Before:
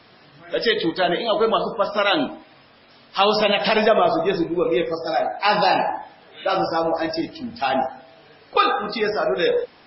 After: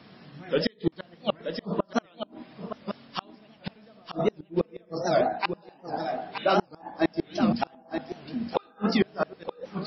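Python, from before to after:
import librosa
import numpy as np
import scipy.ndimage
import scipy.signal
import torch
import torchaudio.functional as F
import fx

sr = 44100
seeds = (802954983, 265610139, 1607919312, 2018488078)

p1 = fx.peak_eq(x, sr, hz=190.0, db=14.0, octaves=1.3)
p2 = fx.hum_notches(p1, sr, base_hz=60, count=6)
p3 = fx.rider(p2, sr, range_db=4, speed_s=2.0)
p4 = fx.gate_flip(p3, sr, shuts_db=-8.0, range_db=-36)
p5 = p4 + fx.echo_single(p4, sr, ms=923, db=-8.0, dry=0)
p6 = fx.record_warp(p5, sr, rpm=78.0, depth_cents=160.0)
y = F.gain(torch.from_numpy(p6), -3.5).numpy()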